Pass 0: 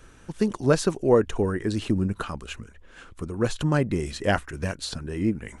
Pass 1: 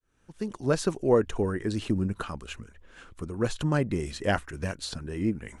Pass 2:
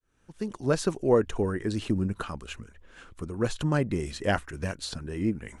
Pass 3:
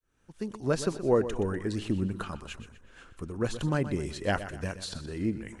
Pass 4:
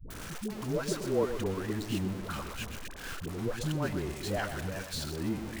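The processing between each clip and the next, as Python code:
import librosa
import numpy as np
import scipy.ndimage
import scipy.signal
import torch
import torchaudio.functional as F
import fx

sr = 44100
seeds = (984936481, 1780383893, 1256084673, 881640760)

y1 = fx.fade_in_head(x, sr, length_s=0.91)
y1 = F.gain(torch.from_numpy(y1), -3.0).numpy()
y2 = y1
y3 = fx.echo_feedback(y2, sr, ms=123, feedback_pct=41, wet_db=-12.5)
y3 = F.gain(torch.from_numpy(y3), -2.5).numpy()
y4 = y3 + 0.5 * 10.0 ** (-29.5 / 20.0) * np.sign(y3)
y4 = fx.dispersion(y4, sr, late='highs', ms=104.0, hz=490.0)
y4 = F.gain(torch.from_numpy(y4), -6.0).numpy()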